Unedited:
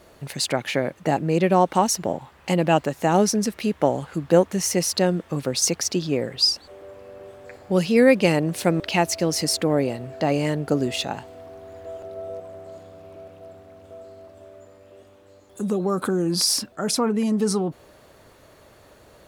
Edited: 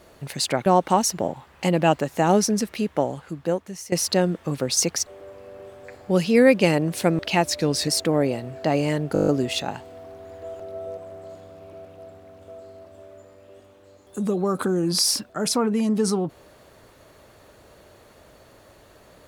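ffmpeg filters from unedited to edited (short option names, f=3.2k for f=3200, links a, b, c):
-filter_complex "[0:a]asplit=13[a][b][c][d][e][f][g][h][i][j][k][l][m];[a]atrim=end=0.662[n];[b]atrim=start=1.508:end=4.77,asetpts=PTS-STARTPTS,afade=t=out:st=1.922:d=1.34:silence=0.149624[o];[c]atrim=start=4.77:end=5.912,asetpts=PTS-STARTPTS,afade=t=in:d=0.004:c=hsin:silence=0.149624[p];[d]atrim=start=6.668:end=9.054[q];[e]atrim=start=9.05:end=9.44,asetpts=PTS-STARTPTS,asetrate=39690,aresample=44100[r];[f]atrim=start=9.436:end=10.722[s];[g]atrim=start=10.698:end=10.722[t];[h]atrim=start=10.698:end=10.722[u];[i]atrim=start=10.698:end=10.722[v];[j]atrim=start=10.698:end=10.722[w];[k]atrim=start=10.698:end=10.722[x];[l]atrim=start=10.698:end=10.722[y];[m]atrim=start=10.698[z];[o][p]concat=n=2:v=0:a=1[aa];[n][aa]acrossfade=d=0.004:c1=hsin:c2=hsin[ab];[ab][q]acrossfade=d=0.004:c1=hsin:c2=hsin[ac];[ac][r]acrossfade=d=0.004:c1=hsin:c2=hsin[ad];[ad][s]acrossfade=d=0.004:c1=hsin:c2=hsin[ae];[ae][t]acrossfade=d=0.004:c1=hsin:c2=hsin[af];[af][u]acrossfade=d=0.004:c1=hsin:c2=hsin[ag];[ag][v]acrossfade=d=0.004:c1=hsin:c2=hsin[ah];[ah][w]acrossfade=d=0.004:c1=hsin:c2=hsin[ai];[ai][x]acrossfade=d=0.004:c1=hsin:c2=hsin[aj];[aj][y]acrossfade=d=0.004:c1=hsin:c2=hsin[ak];[ak][z]acrossfade=d=0.004:c1=hsin:c2=hsin"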